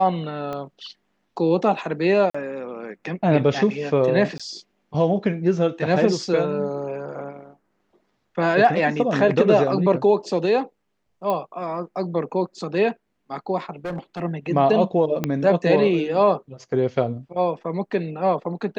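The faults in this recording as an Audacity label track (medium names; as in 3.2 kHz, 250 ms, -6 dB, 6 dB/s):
0.530000	0.530000	pop -18 dBFS
2.300000	2.350000	dropout 45 ms
4.380000	4.400000	dropout 16 ms
11.300000	11.300000	pop -13 dBFS
13.850000	14.230000	clipped -24.5 dBFS
15.240000	15.240000	pop -9 dBFS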